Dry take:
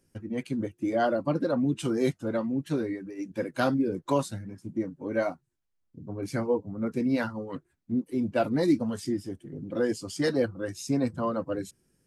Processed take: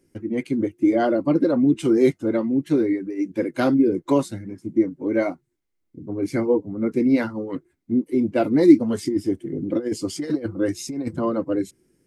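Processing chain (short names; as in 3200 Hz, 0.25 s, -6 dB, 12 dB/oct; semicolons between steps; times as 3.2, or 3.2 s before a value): 8.9–11.19 negative-ratio compressor -30 dBFS, ratio -0.5; small resonant body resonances 330/2100 Hz, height 11 dB, ringing for 20 ms; gain +1.5 dB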